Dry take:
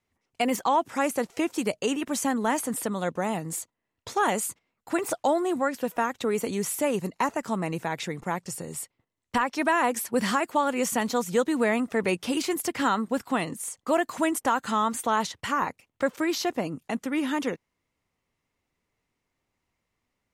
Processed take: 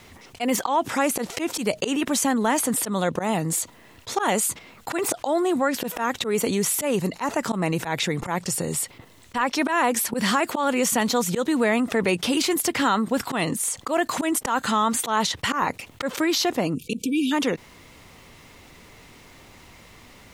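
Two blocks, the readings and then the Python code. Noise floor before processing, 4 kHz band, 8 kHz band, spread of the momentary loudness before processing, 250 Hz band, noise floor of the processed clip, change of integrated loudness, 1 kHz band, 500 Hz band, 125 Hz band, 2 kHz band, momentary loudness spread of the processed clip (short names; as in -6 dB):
-82 dBFS, +8.0 dB, +7.5 dB, 8 LU, +3.5 dB, -50 dBFS, +3.5 dB, +1.5 dB, +2.0 dB, +6.5 dB, +3.5 dB, 6 LU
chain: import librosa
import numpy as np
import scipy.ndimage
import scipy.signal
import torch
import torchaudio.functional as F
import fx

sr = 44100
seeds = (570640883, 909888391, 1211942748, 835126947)

y = fx.spec_erase(x, sr, start_s=16.75, length_s=0.57, low_hz=500.0, high_hz=2300.0)
y = fx.peak_eq(y, sr, hz=3700.0, db=3.5, octaves=0.73)
y = fx.auto_swell(y, sr, attack_ms=108.0)
y = fx.env_flatten(y, sr, amount_pct=50)
y = y * 10.0 ** (1.5 / 20.0)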